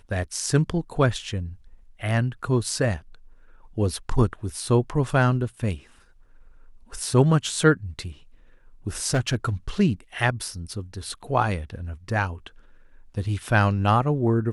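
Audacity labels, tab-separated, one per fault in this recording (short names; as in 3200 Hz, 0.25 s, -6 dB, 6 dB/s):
9.100000	9.490000	clipped -17 dBFS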